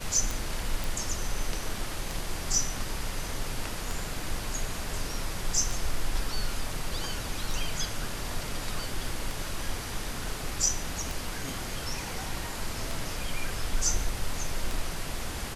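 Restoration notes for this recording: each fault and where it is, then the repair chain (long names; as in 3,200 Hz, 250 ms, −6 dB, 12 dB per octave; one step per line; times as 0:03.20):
scratch tick 33 1/3 rpm
0:00.84: click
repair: click removal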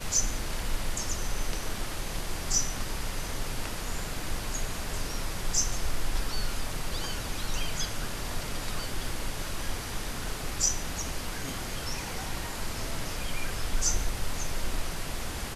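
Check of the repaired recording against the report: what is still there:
none of them is left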